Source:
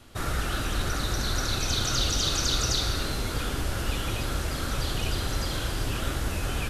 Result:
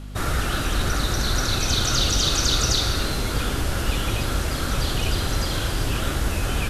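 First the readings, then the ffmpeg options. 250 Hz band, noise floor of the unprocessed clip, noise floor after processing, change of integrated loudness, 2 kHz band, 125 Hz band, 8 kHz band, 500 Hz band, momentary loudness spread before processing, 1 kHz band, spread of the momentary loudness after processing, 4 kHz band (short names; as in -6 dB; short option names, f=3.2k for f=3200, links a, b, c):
+5.5 dB, -31 dBFS, -26 dBFS, +5.0 dB, +5.0 dB, +5.5 dB, +5.0 dB, +5.0 dB, 6 LU, +5.0 dB, 6 LU, +5.0 dB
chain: -af "aeval=exprs='val(0)+0.0112*(sin(2*PI*50*n/s)+sin(2*PI*2*50*n/s)/2+sin(2*PI*3*50*n/s)/3+sin(2*PI*4*50*n/s)/4+sin(2*PI*5*50*n/s)/5)':c=same,volume=5dB"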